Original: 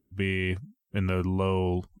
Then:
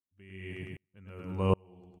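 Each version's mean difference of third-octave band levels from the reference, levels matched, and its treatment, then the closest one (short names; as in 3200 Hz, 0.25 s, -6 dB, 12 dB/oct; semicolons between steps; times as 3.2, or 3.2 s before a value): 9.5 dB: dynamic EQ 4000 Hz, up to -6 dB, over -52 dBFS, Q 1.9; on a send: feedback echo 0.105 s, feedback 38%, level -4.5 dB; on the sum: dB-ramp tremolo swelling 1.3 Hz, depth 38 dB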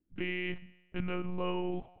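6.5 dB: HPF 43 Hz; resonator 80 Hz, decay 1.1 s, harmonics all, mix 60%; monotone LPC vocoder at 8 kHz 180 Hz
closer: second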